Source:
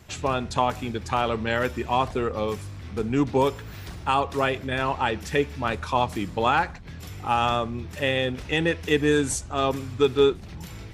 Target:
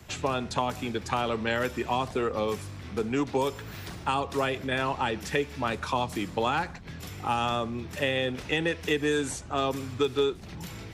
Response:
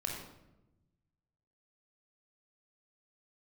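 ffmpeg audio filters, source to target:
-filter_complex "[0:a]acrossover=split=110|340|3600[link_01][link_02][link_03][link_04];[link_01]acompressor=threshold=-50dB:ratio=4[link_05];[link_02]acompressor=threshold=-35dB:ratio=4[link_06];[link_03]acompressor=threshold=-27dB:ratio=4[link_07];[link_04]acompressor=threshold=-39dB:ratio=4[link_08];[link_05][link_06][link_07][link_08]amix=inputs=4:normalize=0,volume=1dB"

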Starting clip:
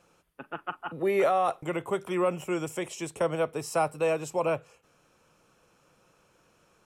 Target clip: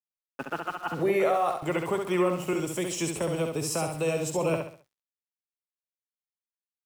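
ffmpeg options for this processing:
ffmpeg -i in.wav -filter_complex "[0:a]asettb=1/sr,asplit=3[link_01][link_02][link_03];[link_01]atrim=end=2.534[link_04];[link_02]atrim=start=2.53:end=4.54,asetpts=PTS-STARTPTS,afade=type=in:duration=0.004:curve=qsin,afade=type=out:start_time=2.006:duration=0.004:curve=qsin,acrossover=split=360|3000[link_05][link_06][link_07];[link_06]acompressor=threshold=-47dB:ratio=2[link_08];[link_05][link_08][link_07]amix=inputs=3:normalize=0[link_09];[link_03]atrim=start=4.536[link_10];[link_04][link_09]acrossfade=duration=0.004:curve1=hsin:curve2=qsin[link_11];[link_11][link_10]acrossfade=duration=0.004:curve1=qsin:curve2=hsin,alimiter=level_in=1.5dB:limit=-24dB:level=0:latency=1:release=413,volume=-1.5dB,acontrast=88,aeval=exprs='val(0)*gte(abs(val(0)),0.00631)':channel_layout=same,aecho=1:1:67|134|201|268:0.562|0.197|0.0689|0.0241" out.wav

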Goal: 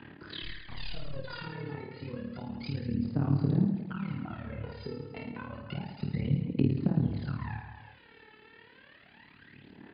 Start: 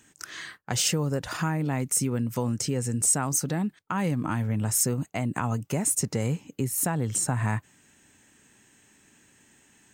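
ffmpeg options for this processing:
ffmpeg -i in.wav -filter_complex "[0:a]highpass=110,aemphasis=mode=reproduction:type=50fm,asplit=2[link_01][link_02];[link_02]adelay=21,volume=-3dB[link_03];[link_01][link_03]amix=inputs=2:normalize=0,acompressor=threshold=-35dB:ratio=6,asettb=1/sr,asplit=3[link_04][link_05][link_06];[link_04]atrim=end=0.424[link_07];[link_05]atrim=start=0.42:end=1.15,asetpts=PTS-STARTPTS,afade=type=in:duration=0.004:curve=qsin,afade=type=out:start_time=0.726:duration=0.004:curve=qsin,aeval=exprs='(tanh(100*val(0)+0.75)-tanh(0.75))/100':channel_layout=same[link_08];[link_06]atrim=start=1.146[link_09];[link_07][link_08]acrossfade=duration=0.004:curve1=hsin:curve2=qsin[link_10];[link_10][link_09]acrossfade=duration=0.004:curve1=qsin:curve2=hsin,tremolo=f=36:d=0.889,aphaser=in_gain=1:out_gain=1:delay=2.3:decay=0.78:speed=0.3:type=sinusoidal,aecho=1:1:50|110|182|268.4|372.1:0.631|0.398|0.251|0.158|0.1,acrossover=split=350|3000[link_11][link_12][link_13];[link_12]acompressor=threshold=-52dB:ratio=2.5[link_14];[link_11][link_14][link_13]amix=inputs=3:normalize=0,volume=4dB" -ar 11025 -c:a libmp3lame -b:a 64k out.mp3

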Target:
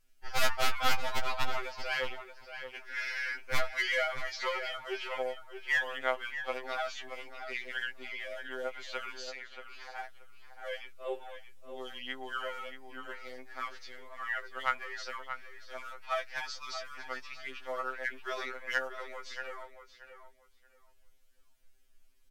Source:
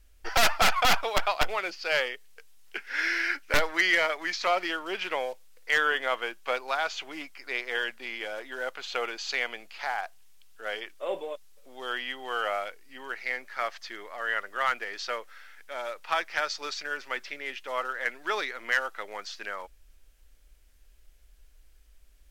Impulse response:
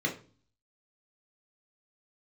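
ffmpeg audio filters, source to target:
-filter_complex "[0:a]asettb=1/sr,asplit=3[link_01][link_02][link_03];[link_01]atrim=end=9.294[link_04];[link_02]atrim=start=9.29:end=9.96,asetpts=PTS-STARTPTS,afade=type=in:duration=0.004:curve=qsin,afade=type=out:start_time=0.666:duration=0.004:curve=qsin,acompressor=threshold=-40dB:ratio=3[link_05];[link_03]atrim=start=9.956[link_06];[link_04][link_05]acrossfade=duration=0.004:curve1=hsin:curve2=qsin[link_07];[link_07][link_06]acrossfade=duration=0.004:curve1=qsin:curve2=hsin,asplit=2[link_08][link_09];[link_09]adelay=629,lowpass=frequency=3300:poles=1,volume=-9dB,asplit=2[link_10][link_11];[link_11]adelay=629,lowpass=frequency=3300:poles=1,volume=0.22,asplit=2[link_12][link_13];[link_13]adelay=629,lowpass=frequency=3300:poles=1,volume=0.22[link_14];[link_08][link_10][link_12][link_14]amix=inputs=4:normalize=0,afftfilt=real='re*2.45*eq(mod(b,6),0)':imag='im*2.45*eq(mod(b,6),0)':win_size=2048:overlap=0.75,volume=-5dB"

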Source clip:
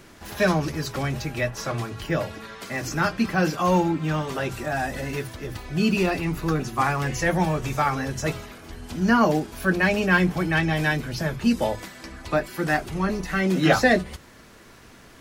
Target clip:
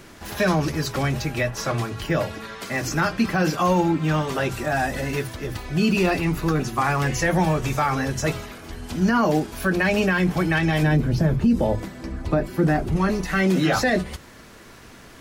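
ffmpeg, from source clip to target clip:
ffmpeg -i in.wav -filter_complex "[0:a]asplit=3[link_01][link_02][link_03];[link_01]afade=type=out:start_time=10.82:duration=0.02[link_04];[link_02]tiltshelf=frequency=720:gain=8,afade=type=in:start_time=10.82:duration=0.02,afade=type=out:start_time=12.95:duration=0.02[link_05];[link_03]afade=type=in:start_time=12.95:duration=0.02[link_06];[link_04][link_05][link_06]amix=inputs=3:normalize=0,alimiter=limit=-15dB:level=0:latency=1:release=50,volume=3.5dB" out.wav

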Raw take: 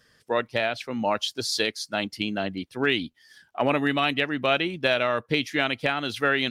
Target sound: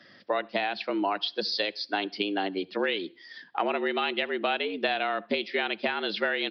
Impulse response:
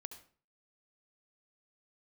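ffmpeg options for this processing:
-filter_complex "[0:a]acompressor=threshold=-34dB:ratio=4,afreqshift=93,asplit=2[link_01][link_02];[1:a]atrim=start_sample=2205[link_03];[link_02][link_03]afir=irnorm=-1:irlink=0,volume=-10.5dB[link_04];[link_01][link_04]amix=inputs=2:normalize=0,aresample=11025,aresample=44100,volume=6dB"

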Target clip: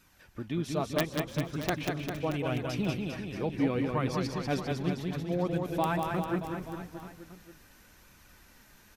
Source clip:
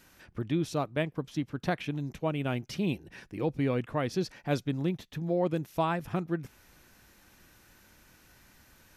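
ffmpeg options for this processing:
ffmpeg -i in.wav -filter_complex "[0:a]flanger=delay=0.8:depth=4.2:regen=40:speed=0.74:shape=sinusoidal,aeval=exprs='(mod(11.9*val(0)+1,2)-1)/11.9':channel_layout=same,asplit=2[link_01][link_02];[link_02]asplit=5[link_03][link_04][link_05][link_06][link_07];[link_03]adelay=154,afreqshift=-47,volume=-20dB[link_08];[link_04]adelay=308,afreqshift=-94,volume=-24dB[link_09];[link_05]adelay=462,afreqshift=-141,volume=-28dB[link_10];[link_06]adelay=616,afreqshift=-188,volume=-32dB[link_11];[link_07]adelay=770,afreqshift=-235,volume=-36.1dB[link_12];[link_08][link_09][link_10][link_11][link_12]amix=inputs=5:normalize=0[link_13];[link_01][link_13]amix=inputs=2:normalize=0,dynaudnorm=framelen=350:gausssize=3:maxgain=3dB,asplit=2[link_14][link_15];[link_15]aecho=0:1:190|399|628.9|881.8|1160:0.631|0.398|0.251|0.158|0.1[link_16];[link_14][link_16]amix=inputs=2:normalize=0" out.wav

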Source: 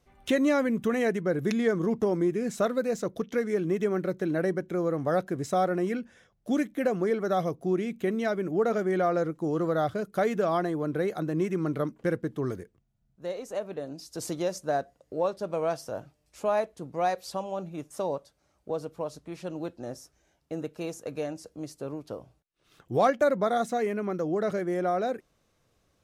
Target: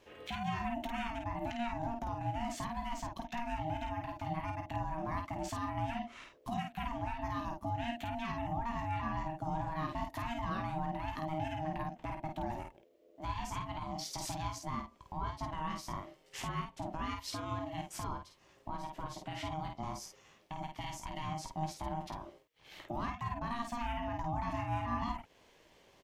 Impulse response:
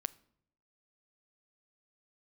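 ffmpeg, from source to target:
-filter_complex "[0:a]equalizer=frequency=1000:width_type=o:width=0.67:gain=-5,equalizer=frequency=2500:width_type=o:width=0.67:gain=10,equalizer=frequency=10000:width_type=o:width=0.67:gain=-6,acompressor=threshold=-40dB:ratio=5,alimiter=level_in=11.5dB:limit=-24dB:level=0:latency=1:release=123,volume=-11.5dB,aeval=exprs='val(0)*sin(2*PI*470*n/s)':channel_layout=same,asplit=2[link_01][link_02];[link_02]aecho=0:1:18|51:0.335|0.596[link_03];[link_01][link_03]amix=inputs=2:normalize=0,volume=7.5dB"

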